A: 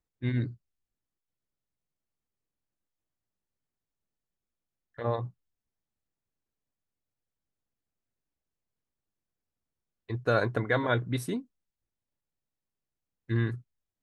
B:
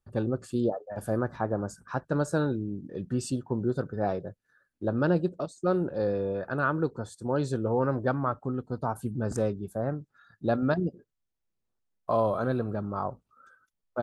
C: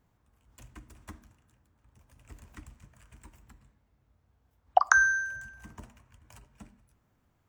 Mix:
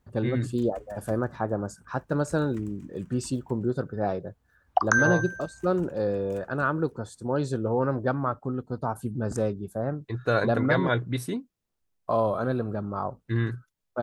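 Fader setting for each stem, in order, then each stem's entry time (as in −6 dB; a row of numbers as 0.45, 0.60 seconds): +1.5, +1.0, −1.0 decibels; 0.00, 0.00, 0.00 seconds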